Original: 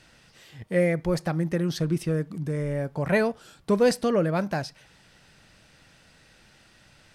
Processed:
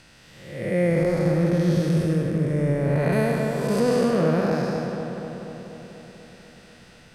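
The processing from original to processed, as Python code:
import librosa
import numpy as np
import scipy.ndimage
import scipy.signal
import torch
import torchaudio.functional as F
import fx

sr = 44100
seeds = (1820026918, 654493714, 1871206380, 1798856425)

y = fx.spec_blur(x, sr, span_ms=339.0)
y = fx.high_shelf(y, sr, hz=8300.0, db=11.5, at=(3.12, 3.8))
y = fx.echo_filtered(y, sr, ms=244, feedback_pct=69, hz=3200.0, wet_db=-5.0)
y = F.gain(torch.from_numpy(y), 6.0).numpy()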